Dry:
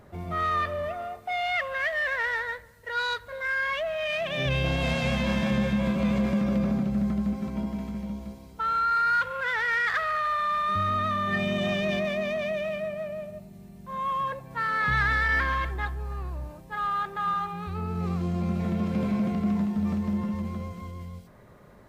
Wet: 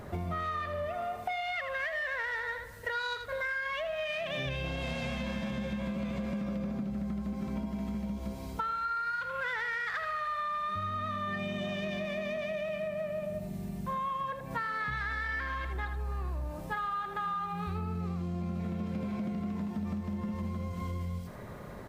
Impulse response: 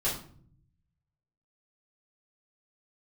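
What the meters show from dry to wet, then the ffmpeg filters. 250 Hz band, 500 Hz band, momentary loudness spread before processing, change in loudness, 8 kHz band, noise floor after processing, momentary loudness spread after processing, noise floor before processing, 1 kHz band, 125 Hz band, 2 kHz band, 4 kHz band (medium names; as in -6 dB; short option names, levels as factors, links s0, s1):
-8.0 dB, -5.5 dB, 12 LU, -7.5 dB, no reading, -43 dBFS, 4 LU, -50 dBFS, -7.0 dB, -6.5 dB, -7.5 dB, -7.0 dB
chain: -filter_complex "[0:a]asplit=2[s0][s1];[s1]aecho=0:1:80:0.316[s2];[s0][s2]amix=inputs=2:normalize=0,acompressor=threshold=0.0112:ratio=16,volume=2.37"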